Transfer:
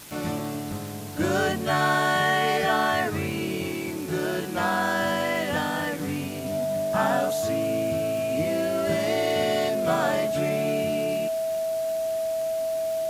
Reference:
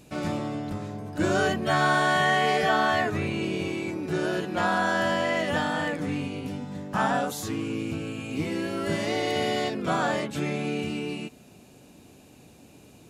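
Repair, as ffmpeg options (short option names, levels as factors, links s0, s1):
-af "adeclick=t=4,bandreject=f=650:w=30,afwtdn=0.0071"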